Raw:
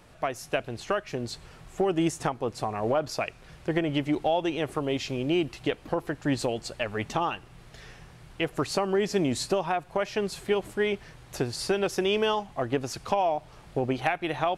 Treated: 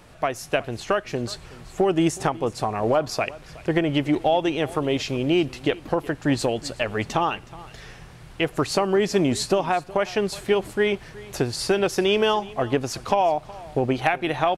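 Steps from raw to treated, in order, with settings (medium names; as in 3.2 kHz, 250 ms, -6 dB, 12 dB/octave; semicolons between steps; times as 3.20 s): delay 369 ms -20 dB; trim +5 dB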